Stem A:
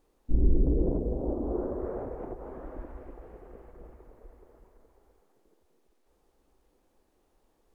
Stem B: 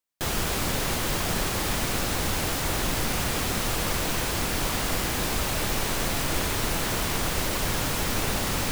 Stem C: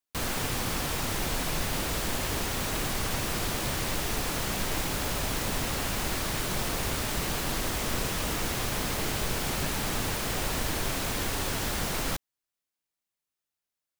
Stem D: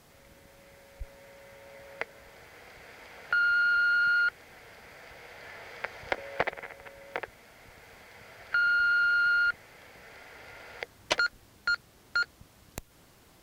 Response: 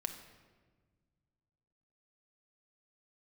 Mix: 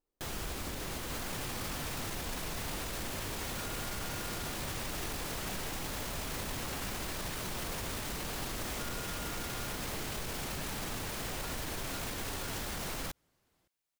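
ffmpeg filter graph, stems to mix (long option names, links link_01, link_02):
-filter_complex "[0:a]volume=-19.5dB[link_01];[1:a]volume=-10.5dB[link_02];[2:a]adelay=950,volume=0.5dB[link_03];[3:a]adelay=250,volume=-17.5dB[link_04];[link_01][link_02][link_03][link_04]amix=inputs=4:normalize=0,alimiter=level_in=5dB:limit=-24dB:level=0:latency=1,volume=-5dB"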